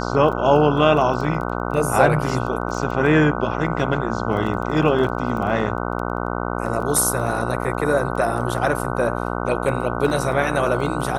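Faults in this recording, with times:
buzz 60 Hz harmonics 25 -25 dBFS
crackle 12 per s -28 dBFS

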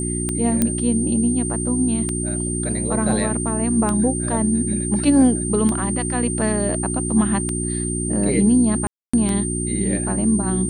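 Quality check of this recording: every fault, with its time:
hum 60 Hz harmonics 6 -25 dBFS
tick 33 1/3 rpm -10 dBFS
whine 8.8 kHz -26 dBFS
0.62 s: pop -4 dBFS
8.87–9.13 s: dropout 265 ms

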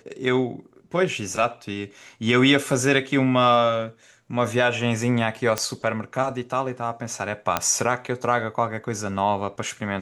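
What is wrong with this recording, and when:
5.58 s: pop -8 dBFS
7.57 s: pop -5 dBFS

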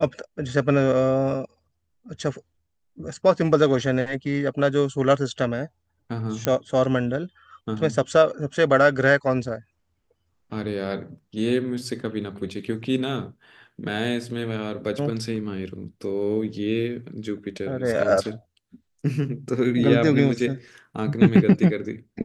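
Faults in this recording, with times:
6.45 s: pop -7 dBFS

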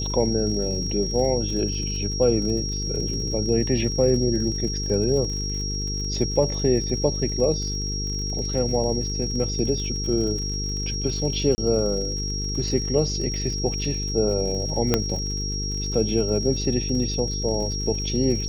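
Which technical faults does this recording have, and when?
buzz 50 Hz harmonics 9 -29 dBFS
crackle 65 per s -32 dBFS
whine 5.6 kHz -29 dBFS
11.55–11.58 s: dropout 30 ms
14.94 s: pop -5 dBFS

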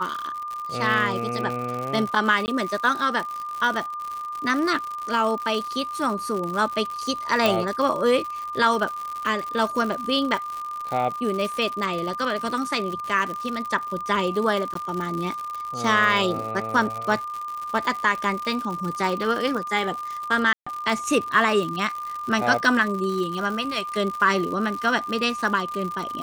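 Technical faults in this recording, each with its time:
crackle 120 per s -28 dBFS
whine 1.2 kHz -29 dBFS
2.46–2.48 s: dropout 19 ms
7.46 s: pop
14.74–14.75 s: dropout 13 ms
20.53–20.66 s: dropout 135 ms

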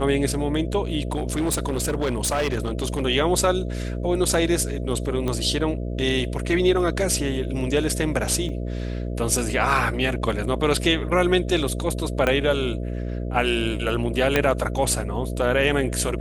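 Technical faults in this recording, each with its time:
buzz 60 Hz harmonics 11 -28 dBFS
1.12–3.02 s: clipped -19 dBFS
5.28 s: pop -14 dBFS
8.49 s: dropout 2.2 ms
12.27 s: pop -9 dBFS
14.36 s: pop -5 dBFS

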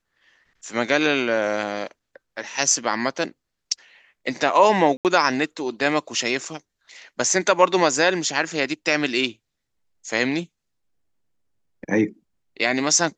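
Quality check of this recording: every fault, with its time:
4.97–5.05 s: dropout 78 ms

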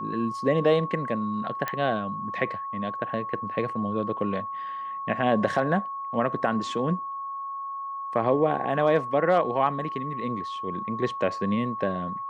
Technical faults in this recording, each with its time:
whine 1.1 kHz -31 dBFS
1.68 s: pop -13 dBFS

